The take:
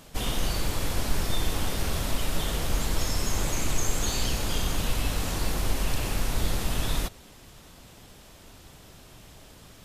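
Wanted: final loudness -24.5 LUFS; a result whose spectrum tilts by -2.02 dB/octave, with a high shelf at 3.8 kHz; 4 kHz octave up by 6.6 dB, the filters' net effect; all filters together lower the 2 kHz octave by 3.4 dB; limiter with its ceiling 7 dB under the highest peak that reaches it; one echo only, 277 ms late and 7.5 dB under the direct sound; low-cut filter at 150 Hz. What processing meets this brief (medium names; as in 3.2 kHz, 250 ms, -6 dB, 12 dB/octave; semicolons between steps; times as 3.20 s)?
high-pass 150 Hz; peaking EQ 2 kHz -9 dB; treble shelf 3.8 kHz +6 dB; peaking EQ 4 kHz +7 dB; peak limiter -20.5 dBFS; delay 277 ms -7.5 dB; trim +3.5 dB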